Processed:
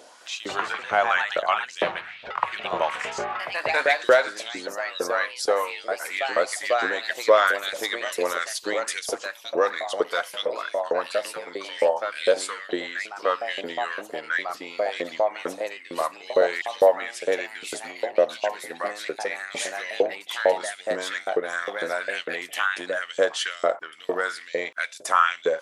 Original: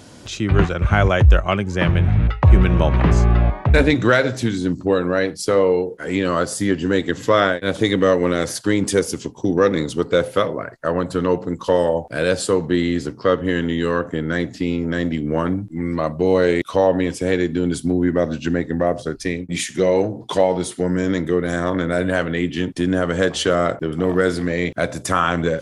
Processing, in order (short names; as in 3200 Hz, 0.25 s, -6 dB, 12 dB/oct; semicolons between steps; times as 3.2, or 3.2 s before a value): LFO high-pass saw up 2.2 Hz 460–4200 Hz; echoes that change speed 0.213 s, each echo +2 st, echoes 2, each echo -6 dB; gain -5.5 dB